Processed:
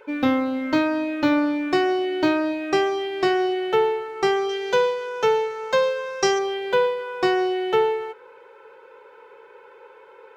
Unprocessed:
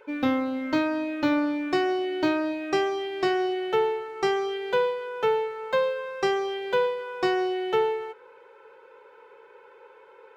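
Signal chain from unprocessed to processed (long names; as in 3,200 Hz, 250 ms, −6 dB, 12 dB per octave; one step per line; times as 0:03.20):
0:04.49–0:06.39: parametric band 6,000 Hz +14 dB 0.65 octaves
level +4 dB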